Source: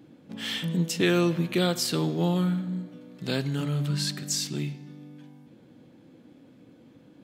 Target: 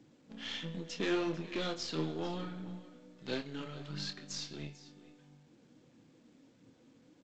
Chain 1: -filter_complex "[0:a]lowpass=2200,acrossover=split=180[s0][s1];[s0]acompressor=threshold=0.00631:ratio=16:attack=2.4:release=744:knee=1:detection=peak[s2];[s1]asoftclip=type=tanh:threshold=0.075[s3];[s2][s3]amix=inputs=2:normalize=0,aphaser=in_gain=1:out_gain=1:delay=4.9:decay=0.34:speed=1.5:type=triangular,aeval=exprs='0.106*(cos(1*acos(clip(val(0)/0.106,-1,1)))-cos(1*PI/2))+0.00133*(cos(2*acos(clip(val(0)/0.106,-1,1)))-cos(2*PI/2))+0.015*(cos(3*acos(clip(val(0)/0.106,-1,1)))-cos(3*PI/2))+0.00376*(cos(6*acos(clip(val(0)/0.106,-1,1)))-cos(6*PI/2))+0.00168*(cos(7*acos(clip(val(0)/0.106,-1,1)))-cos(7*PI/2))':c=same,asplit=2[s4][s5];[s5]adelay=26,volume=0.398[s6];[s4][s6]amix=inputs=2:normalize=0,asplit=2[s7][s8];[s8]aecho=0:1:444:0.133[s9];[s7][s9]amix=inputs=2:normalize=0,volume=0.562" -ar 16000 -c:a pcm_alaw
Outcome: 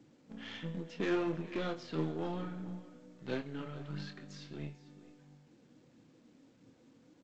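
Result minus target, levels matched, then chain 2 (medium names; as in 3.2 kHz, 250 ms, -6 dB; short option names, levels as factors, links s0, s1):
4 kHz band -8.0 dB; compression: peak gain reduction -7.5 dB
-filter_complex "[0:a]lowpass=5300,acrossover=split=180[s0][s1];[s0]acompressor=threshold=0.00251:ratio=16:attack=2.4:release=744:knee=1:detection=peak[s2];[s1]asoftclip=type=tanh:threshold=0.075[s3];[s2][s3]amix=inputs=2:normalize=0,aphaser=in_gain=1:out_gain=1:delay=4.9:decay=0.34:speed=1.5:type=triangular,aeval=exprs='0.106*(cos(1*acos(clip(val(0)/0.106,-1,1)))-cos(1*PI/2))+0.00133*(cos(2*acos(clip(val(0)/0.106,-1,1)))-cos(2*PI/2))+0.015*(cos(3*acos(clip(val(0)/0.106,-1,1)))-cos(3*PI/2))+0.00376*(cos(6*acos(clip(val(0)/0.106,-1,1)))-cos(6*PI/2))+0.00168*(cos(7*acos(clip(val(0)/0.106,-1,1)))-cos(7*PI/2))':c=same,asplit=2[s4][s5];[s5]adelay=26,volume=0.398[s6];[s4][s6]amix=inputs=2:normalize=0,asplit=2[s7][s8];[s8]aecho=0:1:444:0.133[s9];[s7][s9]amix=inputs=2:normalize=0,volume=0.562" -ar 16000 -c:a pcm_alaw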